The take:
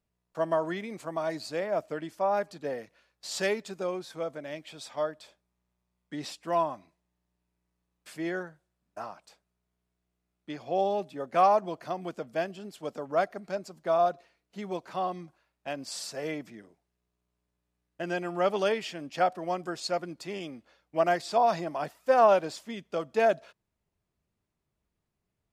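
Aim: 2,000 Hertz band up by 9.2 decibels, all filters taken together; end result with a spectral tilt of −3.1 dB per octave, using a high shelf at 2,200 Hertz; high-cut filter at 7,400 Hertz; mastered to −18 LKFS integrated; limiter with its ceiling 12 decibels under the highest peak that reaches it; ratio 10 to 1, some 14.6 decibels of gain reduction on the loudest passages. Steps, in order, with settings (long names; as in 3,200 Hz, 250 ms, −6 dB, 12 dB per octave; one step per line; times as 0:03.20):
low-pass filter 7,400 Hz
parametric band 2,000 Hz +7.5 dB
high-shelf EQ 2,200 Hz +8.5 dB
downward compressor 10 to 1, threshold −30 dBFS
level +22 dB
brickwall limiter −7.5 dBFS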